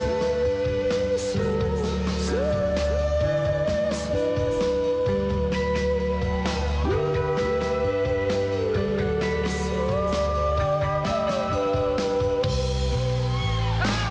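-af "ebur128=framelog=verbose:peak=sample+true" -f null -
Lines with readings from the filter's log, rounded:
Integrated loudness:
  I:         -24.5 LUFS
  Threshold: -34.4 LUFS
Loudness range:
  LRA:         0.4 LU
  Threshold: -44.4 LUFS
  LRA low:   -24.6 LUFS
  LRA high:  -24.2 LUFS
Sample peak:
  Peak:      -14.0 dBFS
True peak:
  Peak:      -14.0 dBFS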